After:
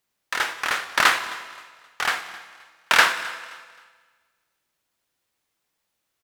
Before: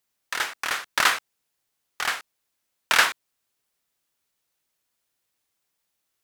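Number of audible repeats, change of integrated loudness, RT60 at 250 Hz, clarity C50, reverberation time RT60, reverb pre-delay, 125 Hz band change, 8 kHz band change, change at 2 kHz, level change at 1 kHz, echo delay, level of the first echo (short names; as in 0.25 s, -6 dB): 2, +2.0 dB, 1.5 s, 10.5 dB, 1.5 s, 12 ms, n/a, -0.5 dB, +3.0 dB, +3.5 dB, 0.263 s, -20.5 dB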